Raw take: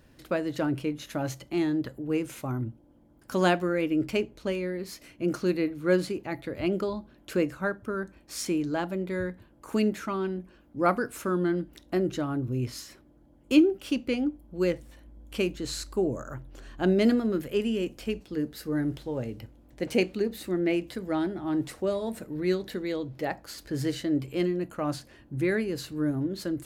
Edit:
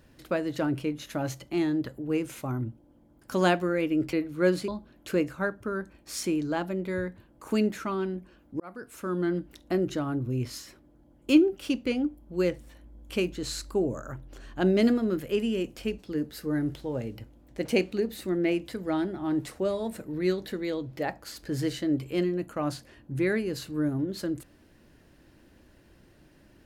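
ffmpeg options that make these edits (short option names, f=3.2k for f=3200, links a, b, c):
-filter_complex "[0:a]asplit=4[a][b][c][d];[a]atrim=end=4.132[e];[b]atrim=start=5.588:end=6.142[f];[c]atrim=start=6.898:end=10.82,asetpts=PTS-STARTPTS,afade=t=out:st=3.918:d=0.004:c=hsin[g];[d]atrim=start=10.82,asetpts=PTS-STARTPTS,afade=t=in:d=0.75[h];[e][f]acrossfade=d=0.004:c1=hsin:c2=hsin[i];[g][h]concat=n=2:v=0:a=1[j];[i][j]acrossfade=d=0.004:c1=hsin:c2=hsin"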